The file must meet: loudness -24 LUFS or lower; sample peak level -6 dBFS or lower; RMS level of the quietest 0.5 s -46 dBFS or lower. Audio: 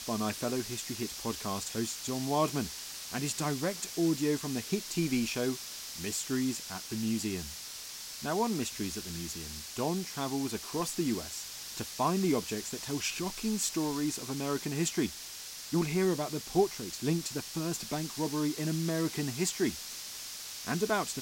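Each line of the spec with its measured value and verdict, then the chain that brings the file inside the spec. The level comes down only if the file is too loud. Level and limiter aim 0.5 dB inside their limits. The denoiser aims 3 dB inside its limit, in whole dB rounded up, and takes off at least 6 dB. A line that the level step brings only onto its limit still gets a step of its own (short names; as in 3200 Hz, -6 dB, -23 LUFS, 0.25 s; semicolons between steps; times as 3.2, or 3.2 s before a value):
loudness -33.5 LUFS: OK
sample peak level -14.5 dBFS: OK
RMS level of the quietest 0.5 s -44 dBFS: fail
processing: denoiser 6 dB, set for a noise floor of -44 dBFS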